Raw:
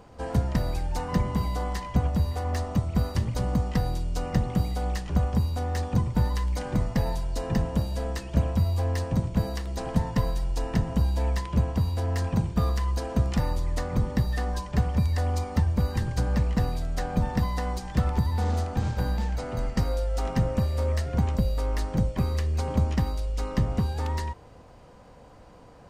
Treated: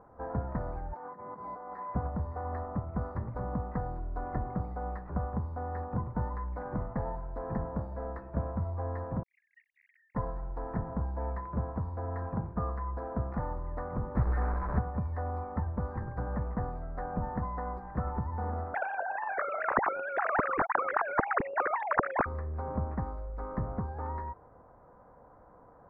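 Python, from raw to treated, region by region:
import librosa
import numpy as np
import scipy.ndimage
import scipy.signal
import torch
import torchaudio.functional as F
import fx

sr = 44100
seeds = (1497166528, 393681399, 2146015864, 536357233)

y = fx.chain(x, sr, fx.highpass(hz=280.0, slope=12),
    fx.over_compress(threshold_db=-39.0, ratio=-1.0), at=(0.93, 1.95))
y = fx.chain(y, sr, fx.lowpass(hz=10000.0, slope=12),
    fx.comb(ms=2.9, depth=0.49), at=(3.98, 4.54))
y = fx.chain(y, sr, fx.sine_speech(),
    fx.steep_highpass(hz=2000.0, slope=96),
    fx.high_shelf(hz=2600.0, db=9.0), at=(9.23, 10.15))
y = fx.chain(y, sr, fx.delta_mod(bps=64000, step_db=-24.0),
    fx.low_shelf(hz=110.0, db=11.5), at=(14.15, 14.79))
y = fx.chain(y, sr, fx.sine_speech(),
    fx.spectral_comp(ratio=10.0), at=(18.74, 22.26))
y = scipy.signal.sosfilt(scipy.signal.cheby2(4, 40, 2800.0, 'lowpass', fs=sr, output='sos'), y)
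y = fx.low_shelf(y, sr, hz=480.0, db=-10.5)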